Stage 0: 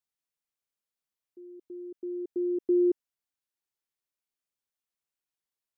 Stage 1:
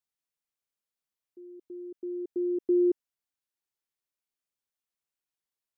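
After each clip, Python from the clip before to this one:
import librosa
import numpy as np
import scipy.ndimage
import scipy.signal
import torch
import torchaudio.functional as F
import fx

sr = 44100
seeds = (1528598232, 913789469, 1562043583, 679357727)

y = x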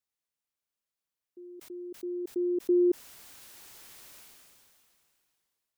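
y = fx.sustainer(x, sr, db_per_s=23.0)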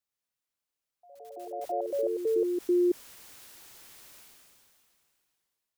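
y = fx.echo_pitch(x, sr, ms=116, semitones=4, count=3, db_per_echo=-3.0)
y = y * librosa.db_to_amplitude(-1.0)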